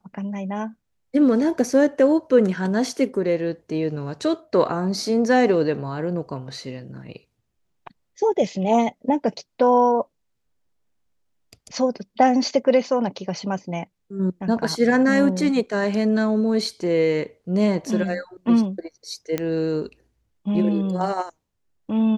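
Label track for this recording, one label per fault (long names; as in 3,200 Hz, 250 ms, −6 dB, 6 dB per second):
19.380000	19.380000	click −10 dBFS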